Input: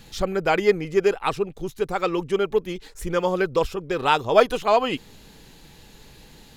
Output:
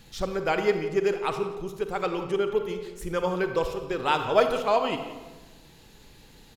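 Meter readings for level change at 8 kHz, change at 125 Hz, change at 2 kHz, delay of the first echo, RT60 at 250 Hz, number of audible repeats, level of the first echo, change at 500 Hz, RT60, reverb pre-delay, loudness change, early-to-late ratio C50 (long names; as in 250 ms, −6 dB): −4.5 dB, −4.0 dB, −4.0 dB, 175 ms, 1.5 s, 1, −17.0 dB, −4.0 dB, 1.3 s, 38 ms, −4.0 dB, 7.5 dB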